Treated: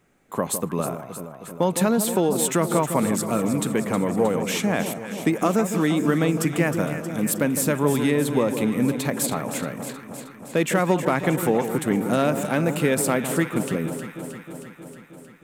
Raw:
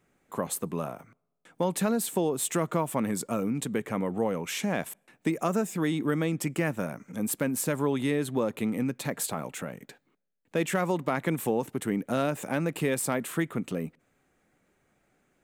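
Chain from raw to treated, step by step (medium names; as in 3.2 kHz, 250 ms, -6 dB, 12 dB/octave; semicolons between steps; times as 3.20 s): echo whose repeats swap between lows and highs 157 ms, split 1.1 kHz, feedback 82%, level -8.5 dB; trim +6 dB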